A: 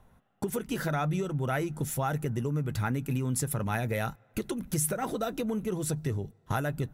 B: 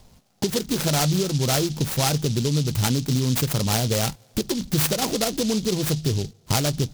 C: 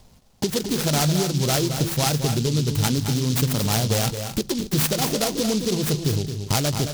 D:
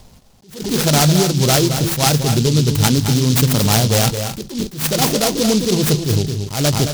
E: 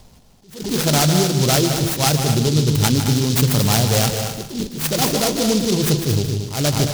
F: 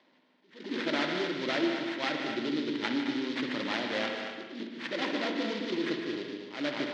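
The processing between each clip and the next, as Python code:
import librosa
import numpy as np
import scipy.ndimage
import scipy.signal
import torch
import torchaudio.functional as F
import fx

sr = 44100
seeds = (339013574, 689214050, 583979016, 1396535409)

y1 = fx.noise_mod_delay(x, sr, seeds[0], noise_hz=4600.0, depth_ms=0.17)
y1 = F.gain(torch.from_numpy(y1), 8.0).numpy()
y2 = fx.echo_multitap(y1, sr, ms=(220, 259), db=(-8.5, -14.5))
y3 = fx.attack_slew(y2, sr, db_per_s=130.0)
y3 = F.gain(torch.from_numpy(y3), 7.5).numpy()
y4 = fx.echo_feedback(y3, sr, ms=152, feedback_pct=28, wet_db=-9.0)
y4 = F.gain(torch.from_numpy(y4), -2.5).numpy()
y5 = fx.cabinet(y4, sr, low_hz=300.0, low_slope=24, high_hz=3400.0, hz=(300.0, 440.0, 750.0, 1200.0, 1900.0, 2700.0), db=(6, -10, -10, -4, 6, -3))
y5 = fx.rev_spring(y5, sr, rt60_s=1.3, pass_ms=(56,), chirp_ms=20, drr_db=5.0)
y5 = F.gain(torch.from_numpy(y5), -8.0).numpy()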